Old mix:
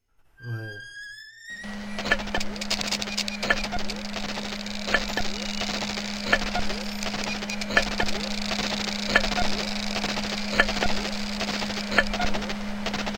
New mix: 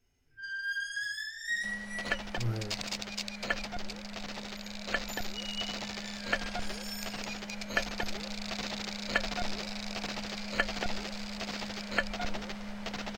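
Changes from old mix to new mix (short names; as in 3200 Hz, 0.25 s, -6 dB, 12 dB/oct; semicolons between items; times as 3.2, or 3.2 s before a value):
speech: entry +1.95 s; first sound: send +11.5 dB; second sound -9.5 dB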